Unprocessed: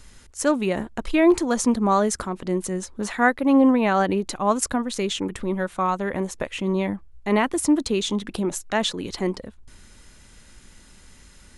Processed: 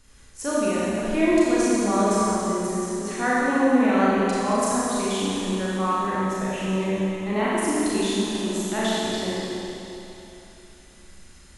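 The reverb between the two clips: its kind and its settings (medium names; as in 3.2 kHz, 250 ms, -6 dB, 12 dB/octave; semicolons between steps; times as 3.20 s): Schroeder reverb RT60 3.1 s, combs from 28 ms, DRR -8.5 dB; trim -9 dB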